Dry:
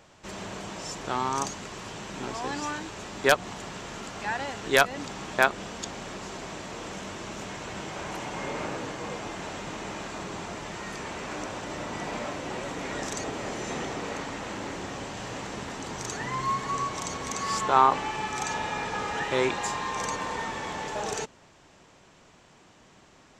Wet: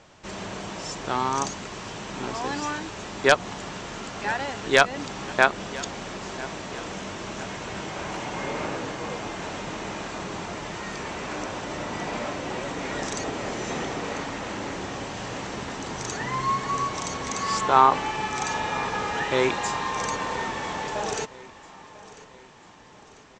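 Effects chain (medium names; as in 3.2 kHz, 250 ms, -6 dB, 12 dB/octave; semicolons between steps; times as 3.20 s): low-pass 7.6 kHz 24 dB/octave; feedback delay 995 ms, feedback 50%, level -19 dB; trim +3 dB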